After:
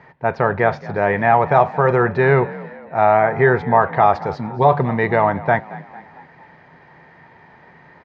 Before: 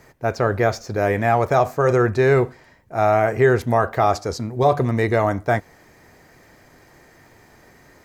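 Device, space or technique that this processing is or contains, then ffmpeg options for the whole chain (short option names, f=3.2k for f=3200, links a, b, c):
frequency-shifting delay pedal into a guitar cabinet: -filter_complex "[0:a]asplit=5[a][b][c][d][e];[b]adelay=225,afreqshift=47,volume=-19dB[f];[c]adelay=450,afreqshift=94,volume=-25dB[g];[d]adelay=675,afreqshift=141,volume=-31dB[h];[e]adelay=900,afreqshift=188,volume=-37.1dB[i];[a][f][g][h][i]amix=inputs=5:normalize=0,highpass=83,equalizer=f=110:t=q:w=4:g=-4,equalizer=f=160:t=q:w=4:g=9,equalizer=f=310:t=q:w=4:g=-5,equalizer=f=910:t=q:w=4:g=10,equalizer=f=1.8k:t=q:w=4:g=5,lowpass=f=3.5k:w=0.5412,lowpass=f=3.5k:w=1.3066,asettb=1/sr,asplit=3[j][k][l];[j]atrim=end=3.174[m];[k]atrim=start=3.17:end=3.81,asetpts=PTS-STARTPTS,afade=t=in:d=0.004:c=qsin,afade=t=out:st=0.636:d=0.004:c=qsin,bandreject=f=2.8k:w=5.1[n];[l]atrim=start=3.806[o];[m][n]acrossfade=d=0.004:c1=hsin:c2=qsin[p];[p][o]acrossfade=d=0.004:c1=qsin:c2=hsin,volume=1dB"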